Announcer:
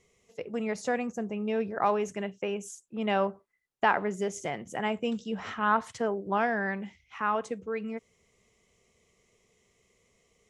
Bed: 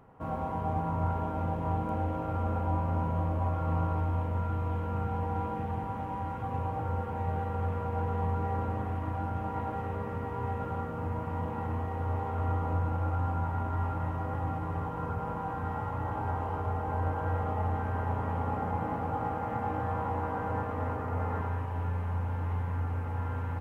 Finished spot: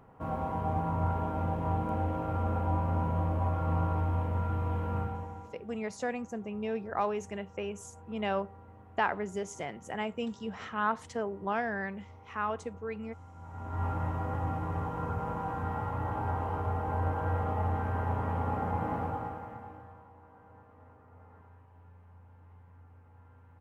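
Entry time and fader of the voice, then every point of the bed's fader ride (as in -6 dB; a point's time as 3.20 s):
5.15 s, -4.5 dB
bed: 4.99 s 0 dB
5.63 s -20.5 dB
13.32 s -20.5 dB
13.85 s 0 dB
19.02 s 0 dB
20.10 s -23.5 dB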